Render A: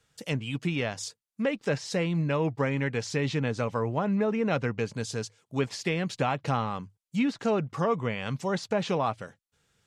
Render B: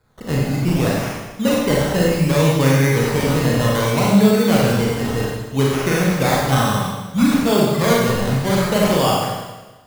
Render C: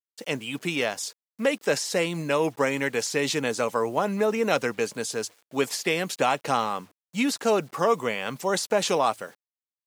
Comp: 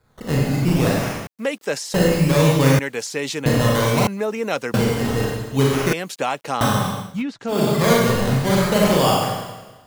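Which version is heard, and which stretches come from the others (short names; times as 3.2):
B
1.27–1.94 from C
2.79–3.46 from C
4.07–4.74 from C
5.93–6.61 from C
7.11–7.58 from A, crossfade 0.24 s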